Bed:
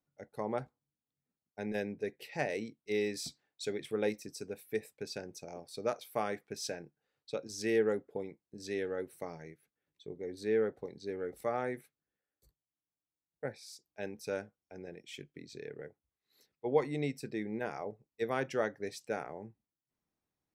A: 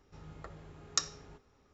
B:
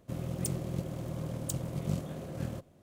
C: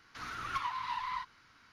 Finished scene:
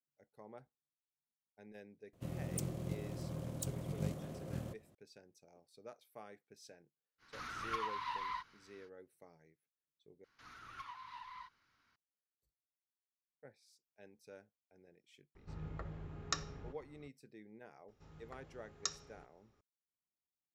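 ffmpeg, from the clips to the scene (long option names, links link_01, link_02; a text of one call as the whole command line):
ffmpeg -i bed.wav -i cue0.wav -i cue1.wav -i cue2.wav -filter_complex "[3:a]asplit=2[link_01][link_02];[1:a]asplit=2[link_03][link_04];[0:a]volume=-18.5dB[link_05];[link_03]bass=frequency=250:gain=6,treble=frequency=4000:gain=-11[link_06];[link_05]asplit=2[link_07][link_08];[link_07]atrim=end=10.244[link_09];[link_02]atrim=end=1.72,asetpts=PTS-STARTPTS,volume=-14dB[link_10];[link_08]atrim=start=11.956[link_11];[2:a]atrim=end=2.82,asetpts=PTS-STARTPTS,volume=-6dB,afade=type=in:duration=0.004:curve=hsin,afade=type=out:start_time=2.816:duration=0.004:curve=hsin,adelay=2130[link_12];[link_01]atrim=end=1.72,asetpts=PTS-STARTPTS,volume=-4dB,afade=type=in:duration=0.05,afade=type=out:start_time=1.67:duration=0.05,adelay=7180[link_13];[link_06]atrim=end=1.73,asetpts=PTS-STARTPTS,volume=-0.5dB,afade=type=in:duration=0.004:curve=hsin,afade=type=out:start_time=1.726:duration=0.004:curve=hsin,adelay=15350[link_14];[link_04]atrim=end=1.73,asetpts=PTS-STARTPTS,volume=-8dB,afade=type=in:duration=0.004:curve=hsin,afade=type=out:start_time=1.726:duration=0.004:curve=hsin,adelay=17880[link_15];[link_09][link_10]acrossfade=duration=0.004:curve1=hsin:curve2=hsin[link_16];[link_16][link_11]acrossfade=duration=0.004:curve1=hsin:curve2=hsin[link_17];[link_17][link_12][link_13][link_14][link_15]amix=inputs=5:normalize=0" out.wav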